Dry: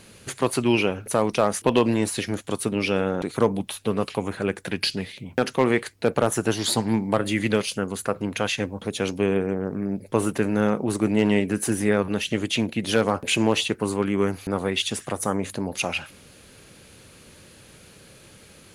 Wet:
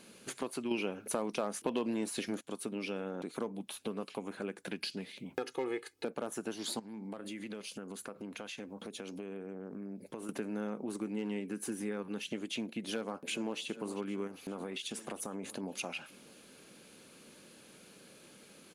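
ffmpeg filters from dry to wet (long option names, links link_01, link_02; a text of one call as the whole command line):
ffmpeg -i in.wav -filter_complex "[0:a]asettb=1/sr,asplit=3[link_01][link_02][link_03];[link_01]atrim=end=5.344[link_04];[link_02]atrim=start=5.34:end=6.05,asetpts=PTS-STARTPTS,afade=type=in:duration=0.004:curve=qsin,afade=type=out:start_time=0.706:duration=0.004:curve=qsin,aecho=1:1:2.4:0.99,atrim=end_sample=31311[link_05];[link_03]atrim=start=6.046[link_06];[link_04][link_05]acrossfade=duration=0.004:curve1=hsin:curve2=qsin[link_07];[link_07][link_06]acrossfade=duration=0.004:curve1=qsin:curve2=hsin,asettb=1/sr,asplit=3[link_08][link_09][link_10];[link_08]atrim=end=6.794[link_11];[link_09]atrim=start=6.79:end=10.29,asetpts=PTS-STARTPTS,afade=type=in:duration=0.004:curve=qsin,afade=type=out:start_time=3.496:duration=0.004:curve=qsin,acompressor=threshold=-33dB:ratio=5:attack=3.2:release=140:knee=1:detection=peak[link_12];[link_10]atrim=start=10.286[link_13];[link_11][link_12]acrossfade=duration=0.004:curve1=hsin:curve2=qsin[link_14];[link_14][link_13]acrossfade=duration=0.004:curve1=qsin:curve2=hsin,asettb=1/sr,asplit=3[link_15][link_16][link_17];[link_15]atrim=end=10.924[link_18];[link_16]atrim=start=10.92:end=12.27,asetpts=PTS-STARTPTS,afade=type=in:duration=0.004:curve=qsin,afade=type=out:start_time=1.346:duration=0.004:curve=qsin,bandreject=frequency=640:width=5.7[link_19];[link_17]atrim=start=12.266[link_20];[link_18][link_19]acrossfade=duration=0.004:curve1=hsin:curve2=qsin[link_21];[link_21][link_20]acrossfade=duration=0.004:curve1=qsin:curve2=hsin,asplit=2[link_22][link_23];[link_23]afade=type=in:start_time=12.87:duration=0.01,afade=type=out:start_time=13.6:duration=0.01,aecho=0:1:400|800|1200|1600|2000|2400|2800:0.149624|0.0972553|0.063216|0.0410904|0.0267087|0.0173607|0.0112844[link_24];[link_22][link_24]amix=inputs=2:normalize=0,asettb=1/sr,asplit=3[link_25][link_26][link_27];[link_25]atrim=end=14.274[link_28];[link_26]atrim=start=14.27:end=15.63,asetpts=PTS-STARTPTS,afade=type=in:duration=0.004:curve=qsin,afade=type=out:start_time=1.356:duration=0.004:curve=qsin,acompressor=threshold=-25dB:ratio=6:attack=3.2:release=140:knee=1:detection=peak[link_29];[link_27]atrim=start=15.626[link_30];[link_28][link_29]acrossfade=duration=0.004:curve1=hsin:curve2=qsin[link_31];[link_31][link_30]acrossfade=duration=0.004:curve1=qsin:curve2=hsin,asplit=3[link_32][link_33][link_34];[link_32]atrim=end=0.712[link_35];[link_33]atrim=start=0.708:end=2.412,asetpts=PTS-STARTPTS,volume=9.5dB[link_36];[link_34]atrim=start=2.408[link_37];[link_35][link_36]acrossfade=duration=0.004:curve1=hsin:curve2=hsin[link_38];[link_38][link_37]acrossfade=duration=0.004:curve1=hsin:curve2=hsin,lowshelf=frequency=140:width_type=q:width=1.5:gain=-14,bandreject=frequency=1900:width=16,acompressor=threshold=-30dB:ratio=3,volume=-7.5dB" out.wav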